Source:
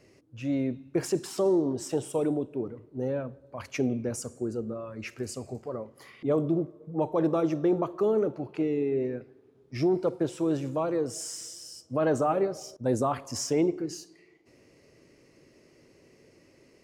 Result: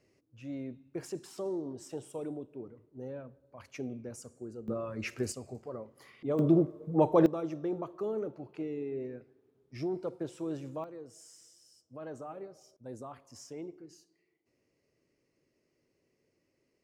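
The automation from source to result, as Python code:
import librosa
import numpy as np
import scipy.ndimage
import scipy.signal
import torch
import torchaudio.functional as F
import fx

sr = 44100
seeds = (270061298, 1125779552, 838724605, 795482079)

y = fx.gain(x, sr, db=fx.steps((0.0, -11.5), (4.68, 1.0), (5.32, -6.0), (6.39, 3.0), (7.26, -9.5), (10.84, -18.0)))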